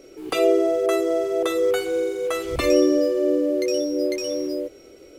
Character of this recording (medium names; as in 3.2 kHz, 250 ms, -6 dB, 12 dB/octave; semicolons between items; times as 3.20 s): noise floor -47 dBFS; spectral tilt -3.5 dB/octave